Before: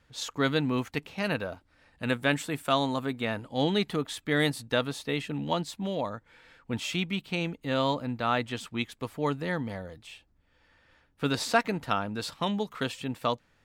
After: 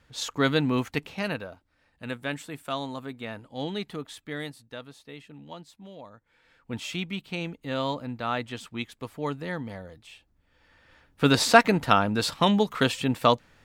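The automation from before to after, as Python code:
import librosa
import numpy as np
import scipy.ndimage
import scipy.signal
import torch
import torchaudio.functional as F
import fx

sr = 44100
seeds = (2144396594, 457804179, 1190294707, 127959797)

y = fx.gain(x, sr, db=fx.line((1.11, 3.0), (1.52, -6.0), (4.2, -6.0), (4.61, -13.5), (6.11, -13.5), (6.73, -2.0), (10.1, -2.0), (11.32, 8.0)))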